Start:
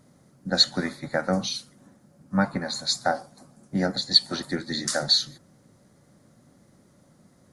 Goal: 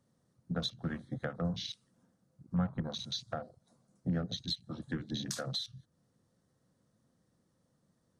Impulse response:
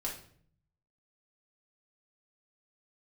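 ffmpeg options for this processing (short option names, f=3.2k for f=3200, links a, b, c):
-filter_complex "[0:a]afwtdn=0.02,acrossover=split=150[a][b];[b]acompressor=threshold=-37dB:ratio=6[c];[a][c]amix=inputs=2:normalize=0,asetrate=40517,aresample=44100"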